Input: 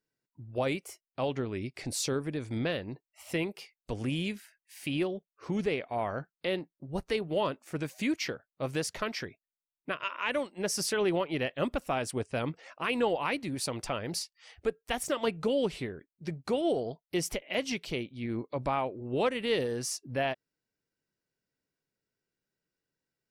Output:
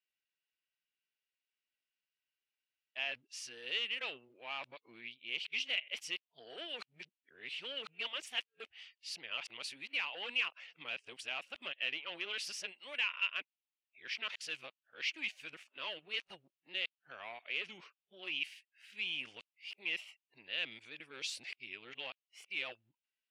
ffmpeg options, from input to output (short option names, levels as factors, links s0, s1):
-af "areverse,asoftclip=type=tanh:threshold=0.0631,bandpass=f=2800:t=q:w=3.5:csg=0,volume=2"